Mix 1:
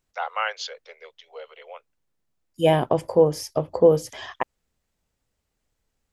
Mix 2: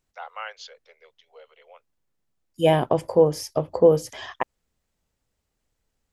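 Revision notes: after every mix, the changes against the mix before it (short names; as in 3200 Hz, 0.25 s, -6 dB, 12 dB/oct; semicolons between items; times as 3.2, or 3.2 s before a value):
first voice -9.0 dB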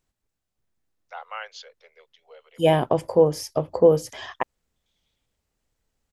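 first voice: entry +0.95 s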